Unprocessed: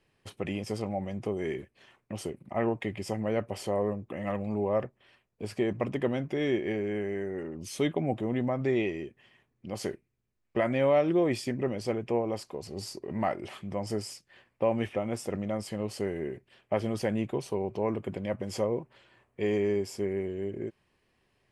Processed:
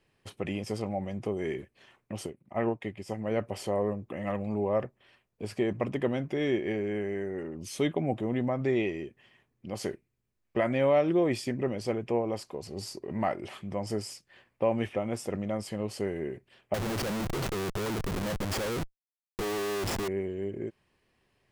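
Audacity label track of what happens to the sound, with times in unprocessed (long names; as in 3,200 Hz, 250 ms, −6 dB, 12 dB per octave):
2.260000	3.310000	expander for the loud parts, over −49 dBFS
16.740000	20.080000	comparator with hysteresis flips at −41 dBFS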